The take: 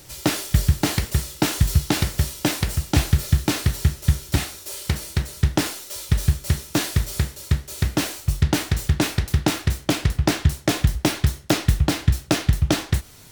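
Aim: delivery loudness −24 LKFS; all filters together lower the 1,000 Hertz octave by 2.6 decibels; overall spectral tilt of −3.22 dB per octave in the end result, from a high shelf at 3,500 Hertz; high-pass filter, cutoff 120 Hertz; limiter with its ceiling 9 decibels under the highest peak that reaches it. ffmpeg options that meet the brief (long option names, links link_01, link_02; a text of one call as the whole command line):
ffmpeg -i in.wav -af "highpass=120,equalizer=frequency=1000:width_type=o:gain=-4,highshelf=frequency=3500:gain=4,volume=2dB,alimiter=limit=-10dB:level=0:latency=1" out.wav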